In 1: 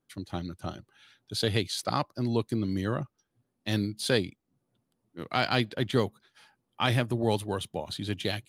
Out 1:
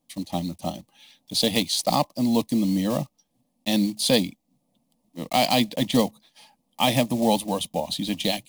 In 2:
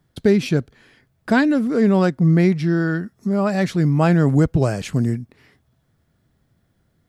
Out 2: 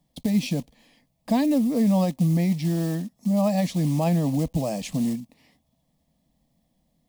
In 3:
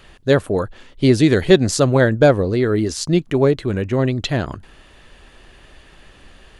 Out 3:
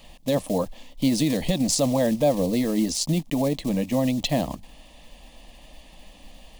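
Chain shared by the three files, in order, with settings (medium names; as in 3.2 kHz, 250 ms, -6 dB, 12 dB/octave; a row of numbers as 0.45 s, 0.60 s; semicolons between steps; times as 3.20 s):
block-companded coder 5-bit; peak limiter -11 dBFS; static phaser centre 390 Hz, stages 6; normalise loudness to -24 LUFS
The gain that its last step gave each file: +10.0 dB, -1.0 dB, +1.0 dB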